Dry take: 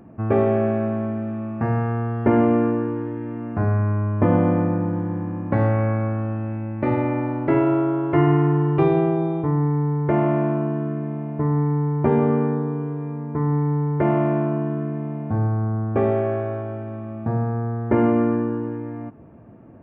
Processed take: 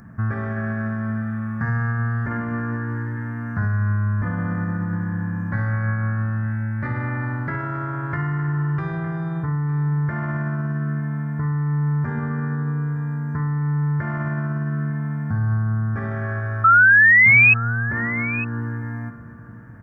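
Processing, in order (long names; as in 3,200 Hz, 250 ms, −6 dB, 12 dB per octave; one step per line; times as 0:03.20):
brickwall limiter −17 dBFS, peak gain reduction 11 dB
drawn EQ curve 130 Hz 0 dB, 210 Hz −3 dB, 330 Hz −17 dB, 770 Hz −12 dB, 1,700 Hz +10 dB, 2,600 Hz −13 dB, 5,400 Hz +6 dB
sound drawn into the spectrogram rise, 0:16.64–0:17.54, 1,300–2,600 Hz −13 dBFS
single-tap delay 907 ms −17 dB
in parallel at +1 dB: downward compressor, threshold −31 dBFS, peak gain reduction 18 dB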